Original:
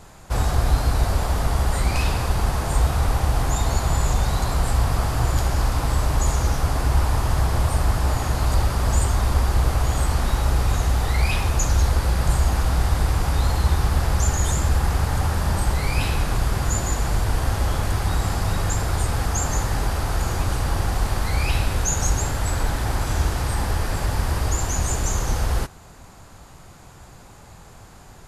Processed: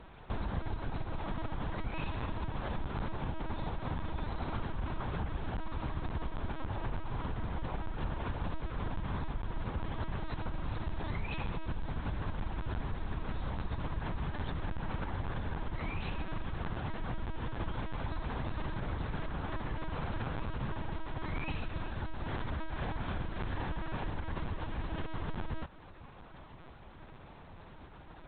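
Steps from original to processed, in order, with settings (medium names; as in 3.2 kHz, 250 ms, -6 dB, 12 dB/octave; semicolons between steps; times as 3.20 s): compression, threshold -26 dBFS, peak gain reduction 14 dB; LPC vocoder at 8 kHz pitch kept; trim -6.5 dB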